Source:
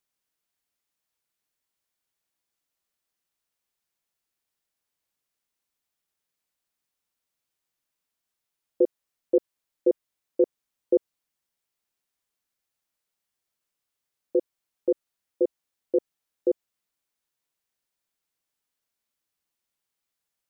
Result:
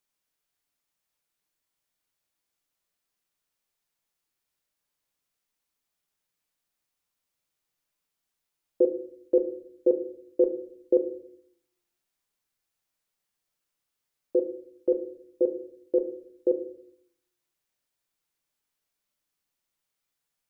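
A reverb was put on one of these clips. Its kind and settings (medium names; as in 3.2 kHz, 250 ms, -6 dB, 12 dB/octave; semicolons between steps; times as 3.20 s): simulated room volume 88 m³, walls mixed, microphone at 0.38 m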